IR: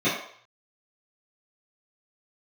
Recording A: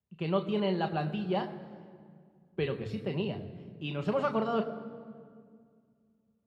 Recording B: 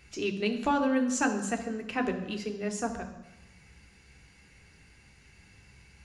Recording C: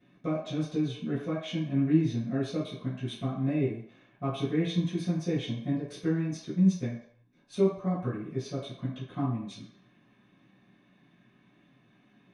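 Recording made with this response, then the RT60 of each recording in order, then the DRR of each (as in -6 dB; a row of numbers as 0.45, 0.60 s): C; 2.1, 1.0, 0.60 s; 4.5, 4.5, -13.0 dB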